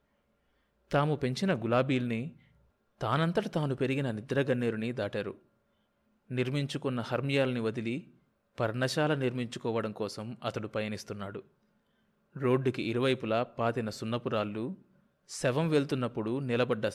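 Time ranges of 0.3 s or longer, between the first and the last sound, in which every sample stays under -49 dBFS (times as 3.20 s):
2.36–3.01 s
5.36–6.30 s
8.09–8.58 s
11.41–12.35 s
14.82–15.29 s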